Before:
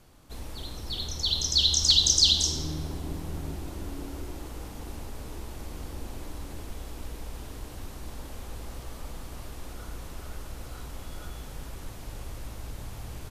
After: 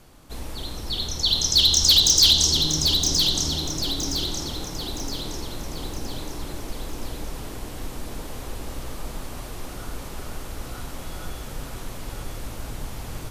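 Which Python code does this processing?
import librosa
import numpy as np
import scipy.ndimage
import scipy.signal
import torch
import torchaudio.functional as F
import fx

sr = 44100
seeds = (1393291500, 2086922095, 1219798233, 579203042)

y = np.clip(10.0 ** (16.5 / 20.0) * x, -1.0, 1.0) / 10.0 ** (16.5 / 20.0)
y = fx.peak_eq(y, sr, hz=81.0, db=-4.0, octaves=0.77)
y = fx.echo_feedback(y, sr, ms=967, feedback_pct=45, wet_db=-5.5)
y = y * 10.0 ** (6.0 / 20.0)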